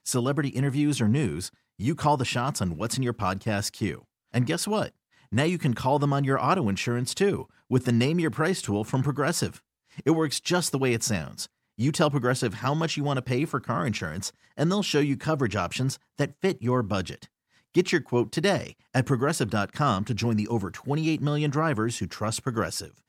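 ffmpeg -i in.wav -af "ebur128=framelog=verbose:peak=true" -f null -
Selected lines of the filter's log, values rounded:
Integrated loudness:
  I:         -26.6 LUFS
  Threshold: -36.8 LUFS
Loudness range:
  LRA:         2.1 LU
  Threshold: -46.8 LUFS
  LRA low:   -27.7 LUFS
  LRA high:  -25.6 LUFS
True peak:
  Peak:       -8.7 dBFS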